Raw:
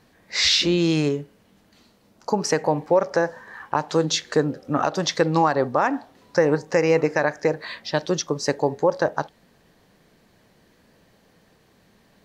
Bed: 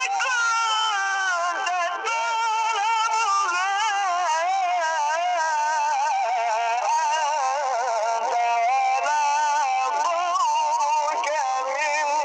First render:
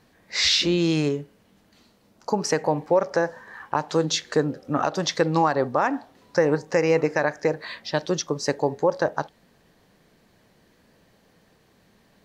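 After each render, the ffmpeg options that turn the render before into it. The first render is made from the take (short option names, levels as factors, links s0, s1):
-af "volume=0.841"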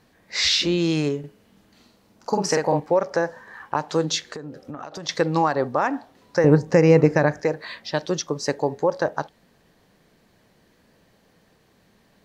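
-filter_complex "[0:a]asettb=1/sr,asplit=3[s0][s1][s2];[s0]atrim=end=1.194[s3];[s1]atrim=start=1.19:end=2.8,asetpts=PTS-STARTPTS,afade=t=in:d=0.004:c=qsin,afade=t=out:st=1.606:d=0.004:c=qsin,asplit=2[s4][s5];[s5]adelay=47,volume=0.708[s6];[s4][s6]amix=inputs=2:normalize=0,atrim=end_sample=71001[s7];[s2]atrim=start=2.796[s8];[s3][s7]acrossfade=d=0.004:c1=hsin:c2=qsin[s9];[s9][s8]acrossfade=d=0.004:c1=qsin:c2=hsin,asettb=1/sr,asplit=3[s10][s11][s12];[s10]atrim=end=4.314[s13];[s11]atrim=start=4.31:end=5.09,asetpts=PTS-STARTPTS,afade=t=in:d=0.004:c=qsin,afade=t=out:st=0.776:d=0.004:c=qsin,acompressor=threshold=0.0316:ratio=16:attack=3.2:release=140:knee=1:detection=peak[s14];[s12]atrim=start=5.086[s15];[s13][s14]acrossfade=d=0.004:c1=hsin:c2=qsin[s16];[s16][s15]acrossfade=d=0.004:c1=qsin:c2=hsin,asettb=1/sr,asplit=3[s17][s18][s19];[s17]atrim=end=6.444[s20];[s18]atrim=start=6.44:end=7.41,asetpts=PTS-STARTPTS,afade=t=in:d=0.004:c=qsin,afade=t=out:st=0.966:d=0.004:c=qsin,equalizer=f=84:w=0.3:g=15[s21];[s19]atrim=start=7.406[s22];[s20][s21]acrossfade=d=0.004:c1=hsin:c2=qsin[s23];[s23][s22]acrossfade=d=0.004:c1=qsin:c2=hsin"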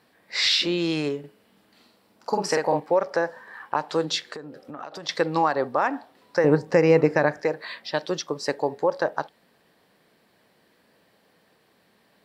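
-af "highpass=f=340:p=1,equalizer=f=6400:w=4.3:g=-10"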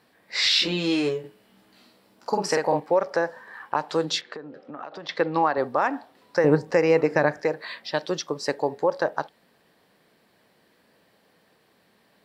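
-filter_complex "[0:a]asettb=1/sr,asplit=3[s0][s1][s2];[s0]atrim=end=0.544[s3];[s1]atrim=start=0.54:end=2.29,asetpts=PTS-STARTPTS,afade=t=in:d=0.004:c=qsin,afade=t=out:st=1.746:d=0.004:c=qsin,asplit=2[s4][s5];[s5]adelay=16,volume=0.75[s6];[s4][s6]amix=inputs=2:normalize=0,atrim=end_sample=77175[s7];[s2]atrim=start=2.286[s8];[s3][s7]acrossfade=d=0.004:c1=hsin:c2=qsin[s9];[s9][s8]acrossfade=d=0.004:c1=qsin:c2=hsin,asettb=1/sr,asplit=3[s10][s11][s12];[s10]atrim=end=4.214[s13];[s11]atrim=start=4.21:end=5.58,asetpts=PTS-STARTPTS,afade=t=in:d=0.004:c=qsin,afade=t=out:st=1.366:d=0.004:c=qsin,highpass=150,lowpass=3300[s14];[s12]atrim=start=5.576[s15];[s13][s14]acrossfade=d=0.004:c1=hsin:c2=qsin[s16];[s16][s15]acrossfade=d=0.004:c1=qsin:c2=hsin,asettb=1/sr,asplit=3[s17][s18][s19];[s17]atrim=end=6.714[s20];[s18]atrim=start=6.71:end=7.12,asetpts=PTS-STARTPTS,afade=t=in:d=0.004:c=qsin,afade=t=out:st=0.406:d=0.004:c=qsin,highpass=f=330:p=1[s21];[s19]atrim=start=7.116[s22];[s20][s21]acrossfade=d=0.004:c1=hsin:c2=qsin[s23];[s23][s22]acrossfade=d=0.004:c1=qsin:c2=hsin"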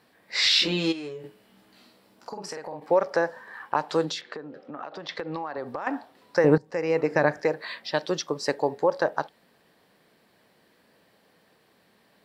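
-filter_complex "[0:a]asplit=3[s0][s1][s2];[s0]afade=t=out:st=0.91:d=0.02[s3];[s1]acompressor=threshold=0.0178:ratio=4:attack=3.2:release=140:knee=1:detection=peak,afade=t=in:st=0.91:d=0.02,afade=t=out:st=2.81:d=0.02[s4];[s2]afade=t=in:st=2.81:d=0.02[s5];[s3][s4][s5]amix=inputs=3:normalize=0,asettb=1/sr,asplit=3[s6][s7][s8];[s6]atrim=end=4.104[s9];[s7]atrim=start=4.1:end=5.87,asetpts=PTS-STARTPTS,afade=t=in:d=0.004:c=qsin,afade=t=out:st=1.766:d=0.004:c=qsin,acompressor=threshold=0.0398:ratio=10:attack=3.2:release=140:knee=1:detection=peak[s10];[s8]atrim=start=5.866[s11];[s9][s10]acrossfade=d=0.004:c1=hsin:c2=qsin[s12];[s12][s11]acrossfade=d=0.004:c1=qsin:c2=hsin,asplit=2[s13][s14];[s13]atrim=end=6.58,asetpts=PTS-STARTPTS,afade=t=out:st=6.576:d=0.004:c=hsin:silence=0.125893[s15];[s14]atrim=start=6.58,asetpts=PTS-STARTPTS,afade=t=in:d=0.71:silence=0.125893[s16];[s15][s16]concat=n=2:v=0:a=1"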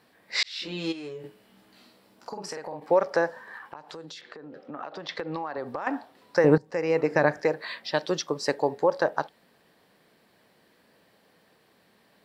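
-filter_complex "[0:a]asettb=1/sr,asplit=3[s0][s1][s2];[s0]atrim=end=3.574[s3];[s1]atrim=start=3.57:end=4.57,asetpts=PTS-STARTPTS,afade=t=in:d=0.004:c=qsin,afade=t=out:st=0.996:d=0.004:c=qsin,acompressor=threshold=0.0112:ratio=6:attack=3.2:release=140:knee=1:detection=peak[s4];[s2]atrim=start=4.566[s5];[s3][s4]acrossfade=d=0.004:c1=hsin:c2=qsin[s6];[s6][s5]acrossfade=d=0.004:c1=qsin:c2=hsin,asplit=2[s7][s8];[s7]atrim=end=0.43,asetpts=PTS-STARTPTS,afade=t=out:st=0.426:d=0.004:c=hsin[s9];[s8]atrim=start=0.43,asetpts=PTS-STARTPTS,afade=t=in:d=0.79[s10];[s9][s10]concat=n=2:v=0:a=1"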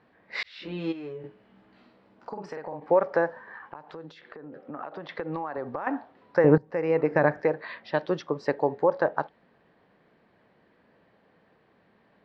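-af "lowpass=2100,lowshelf=f=110:g=5"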